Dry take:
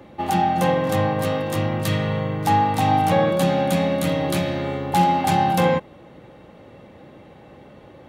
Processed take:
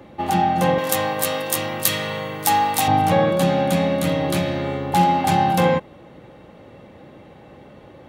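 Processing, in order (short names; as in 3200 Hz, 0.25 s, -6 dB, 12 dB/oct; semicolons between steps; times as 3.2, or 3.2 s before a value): 0.78–2.88 RIAA curve recording; gain +1 dB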